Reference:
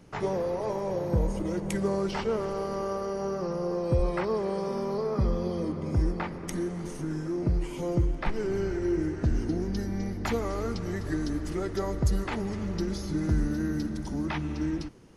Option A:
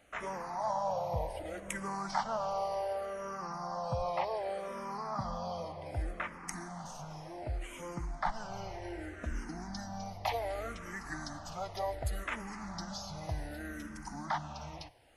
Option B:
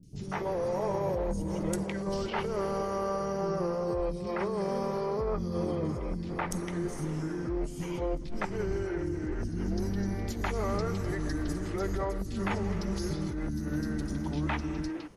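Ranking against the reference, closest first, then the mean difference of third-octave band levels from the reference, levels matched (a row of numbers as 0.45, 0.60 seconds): B, A; 4.5, 7.0 decibels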